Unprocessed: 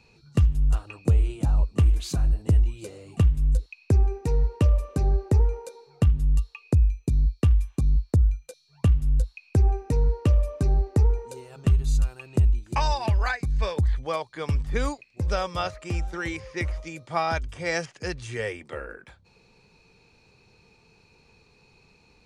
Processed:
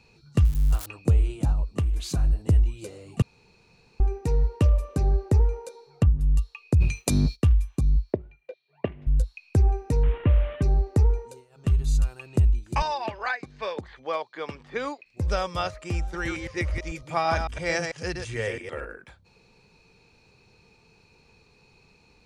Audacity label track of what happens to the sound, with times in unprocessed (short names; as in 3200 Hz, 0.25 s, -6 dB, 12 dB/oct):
0.450000	0.860000	switching spikes of -25 dBFS
1.520000	2.090000	compressor 5:1, threshold -21 dBFS
3.220000	4.000000	room tone
5.560000	6.210000	treble ducked by the level closes to 770 Hz, closed at -14.5 dBFS
6.800000	7.350000	spectral limiter ceiling under each frame's peak by 29 dB
8.130000	9.070000	speaker cabinet 260–2800 Hz, peaks and dips at 390 Hz +9 dB, 620 Hz +9 dB, 1300 Hz -7 dB, 2000 Hz +5 dB
10.030000	10.620000	delta modulation 16 kbps, step -34 dBFS
11.170000	11.790000	dip -15 dB, fades 0.29 s
12.820000	15.060000	BPF 310–4100 Hz
16.030000	18.850000	reverse delay 0.111 s, level -5 dB